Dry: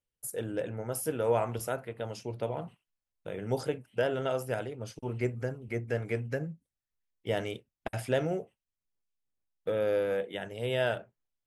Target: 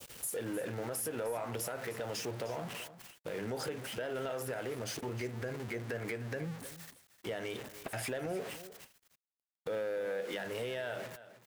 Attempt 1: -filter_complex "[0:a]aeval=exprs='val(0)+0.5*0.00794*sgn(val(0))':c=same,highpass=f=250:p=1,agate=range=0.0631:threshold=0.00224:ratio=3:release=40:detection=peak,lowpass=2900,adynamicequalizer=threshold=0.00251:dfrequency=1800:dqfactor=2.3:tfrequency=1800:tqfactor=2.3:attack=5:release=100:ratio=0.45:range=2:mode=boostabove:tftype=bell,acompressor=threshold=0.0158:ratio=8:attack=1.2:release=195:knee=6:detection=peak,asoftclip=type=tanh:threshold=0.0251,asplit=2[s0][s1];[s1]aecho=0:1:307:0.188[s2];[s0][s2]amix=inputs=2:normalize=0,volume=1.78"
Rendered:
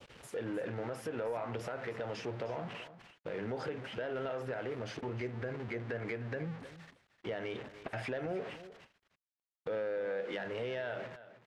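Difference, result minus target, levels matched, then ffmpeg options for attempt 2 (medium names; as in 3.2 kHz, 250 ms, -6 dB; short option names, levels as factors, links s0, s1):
4 kHz band -4.0 dB
-filter_complex "[0:a]aeval=exprs='val(0)+0.5*0.00794*sgn(val(0))':c=same,highpass=f=250:p=1,agate=range=0.0631:threshold=0.00224:ratio=3:release=40:detection=peak,adynamicequalizer=threshold=0.00251:dfrequency=1800:dqfactor=2.3:tfrequency=1800:tqfactor=2.3:attack=5:release=100:ratio=0.45:range=2:mode=boostabove:tftype=bell,acompressor=threshold=0.0158:ratio=8:attack=1.2:release=195:knee=6:detection=peak,asoftclip=type=tanh:threshold=0.0251,asplit=2[s0][s1];[s1]aecho=0:1:307:0.188[s2];[s0][s2]amix=inputs=2:normalize=0,volume=1.78"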